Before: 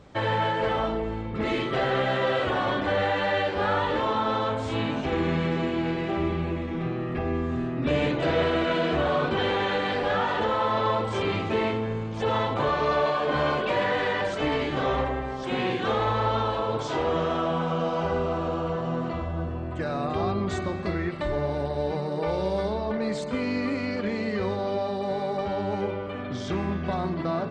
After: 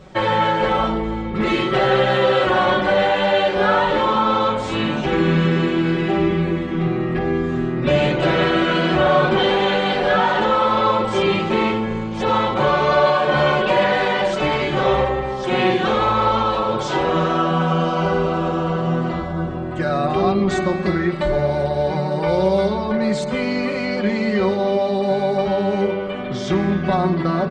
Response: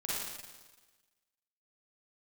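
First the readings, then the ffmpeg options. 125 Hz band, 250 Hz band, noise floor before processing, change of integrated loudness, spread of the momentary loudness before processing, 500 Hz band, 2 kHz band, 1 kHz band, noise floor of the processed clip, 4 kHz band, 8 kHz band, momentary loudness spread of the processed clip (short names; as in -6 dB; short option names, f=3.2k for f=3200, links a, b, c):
+7.5 dB, +8.5 dB, -32 dBFS, +8.0 dB, 5 LU, +8.0 dB, +8.0 dB, +8.5 dB, -25 dBFS, +8.5 dB, n/a, 5 LU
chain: -af "aecho=1:1:5.4:0.8,volume=6dB"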